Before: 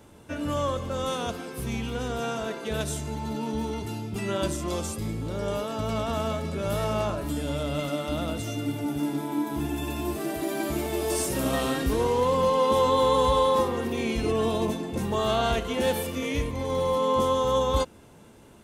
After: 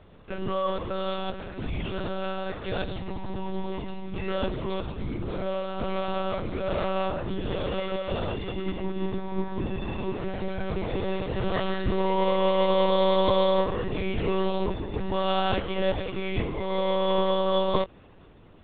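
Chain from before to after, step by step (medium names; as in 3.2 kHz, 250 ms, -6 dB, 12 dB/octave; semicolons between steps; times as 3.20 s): monotone LPC vocoder at 8 kHz 190 Hz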